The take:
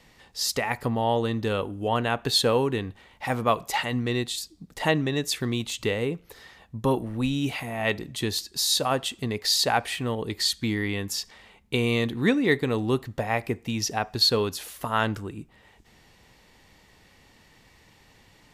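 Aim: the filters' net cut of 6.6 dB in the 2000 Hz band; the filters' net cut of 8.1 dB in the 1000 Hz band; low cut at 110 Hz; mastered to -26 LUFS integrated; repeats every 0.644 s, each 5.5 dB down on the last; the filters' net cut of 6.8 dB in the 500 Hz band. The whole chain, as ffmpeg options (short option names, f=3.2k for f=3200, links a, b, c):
-af "highpass=110,equalizer=f=500:t=o:g=-6.5,equalizer=f=1k:t=o:g=-7,equalizer=f=2k:t=o:g=-6,aecho=1:1:644|1288|1932|2576|3220|3864|4508:0.531|0.281|0.149|0.079|0.0419|0.0222|0.0118,volume=2dB"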